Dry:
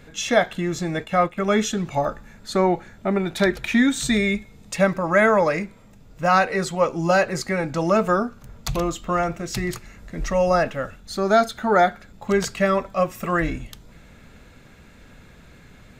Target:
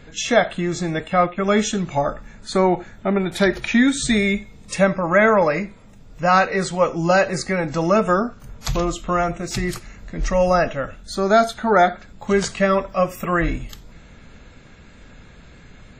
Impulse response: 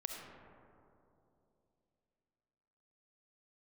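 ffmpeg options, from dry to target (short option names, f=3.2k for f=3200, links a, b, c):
-filter_complex "[0:a]asettb=1/sr,asplit=3[a][b][c];[a]atrim=end=4.924[d];[b]atrim=start=4.92:end=5.64,asetpts=PTS-STARTPTS,afade=t=in:d=0.004:c=qsin,afade=t=out:st=0.716:d=0.004:c=qsin,highshelf=f=11k:g=-12[e];[c]atrim=start=5.636[f];[d][e]acrossfade=d=0.004:c1=hsin:c2=qsin[g];[g][f]acrossfade=d=0.004:c1=qsin:c2=hsin,asplit=2[h][i];[1:a]atrim=start_sample=2205,atrim=end_sample=4410,lowshelf=f=77:g=11[j];[i][j]afir=irnorm=-1:irlink=0,volume=-9dB[k];[h][k]amix=inputs=2:normalize=0" -ar 48000 -c:a wmav2 -b:a 32k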